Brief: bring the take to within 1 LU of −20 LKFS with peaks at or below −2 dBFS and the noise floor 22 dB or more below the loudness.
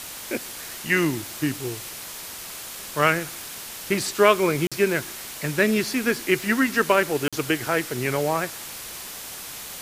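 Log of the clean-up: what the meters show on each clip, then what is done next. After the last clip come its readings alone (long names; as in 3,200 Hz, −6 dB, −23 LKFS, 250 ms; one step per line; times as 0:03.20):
number of dropouts 2; longest dropout 46 ms; background noise floor −37 dBFS; target noise floor −47 dBFS; integrated loudness −24.5 LKFS; sample peak −3.0 dBFS; target loudness −20.0 LKFS
→ repair the gap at 0:04.67/0:07.28, 46 ms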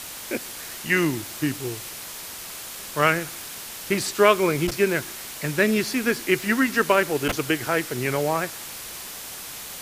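number of dropouts 0; background noise floor −37 dBFS; target noise floor −47 dBFS
→ broadband denoise 10 dB, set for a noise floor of −37 dBFS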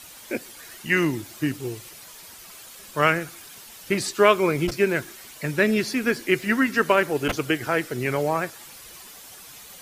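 background noise floor −45 dBFS; target noise floor −46 dBFS
→ broadband denoise 6 dB, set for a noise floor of −45 dBFS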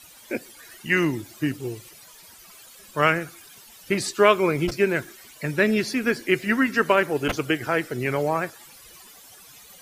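background noise floor −48 dBFS; integrated loudness −23.5 LKFS; sample peak −3.0 dBFS; target loudness −20.0 LKFS
→ level +3.5 dB
brickwall limiter −2 dBFS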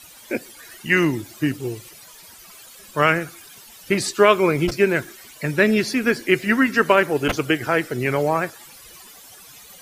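integrated loudness −20.5 LKFS; sample peak −2.0 dBFS; background noise floor −45 dBFS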